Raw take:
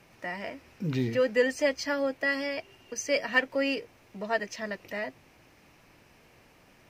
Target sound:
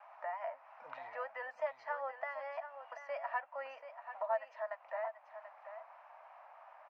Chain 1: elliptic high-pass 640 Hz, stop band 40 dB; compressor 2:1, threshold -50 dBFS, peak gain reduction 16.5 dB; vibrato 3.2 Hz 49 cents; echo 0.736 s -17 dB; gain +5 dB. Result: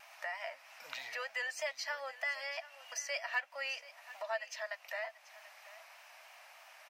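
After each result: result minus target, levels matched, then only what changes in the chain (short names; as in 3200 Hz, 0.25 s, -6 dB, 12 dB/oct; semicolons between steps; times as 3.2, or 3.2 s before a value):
1000 Hz band -7.5 dB; echo-to-direct -6.5 dB
add after compressor: synth low-pass 1000 Hz, resonance Q 1.9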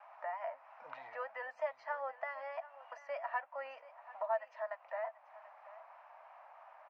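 echo-to-direct -6.5 dB
change: echo 0.736 s -10.5 dB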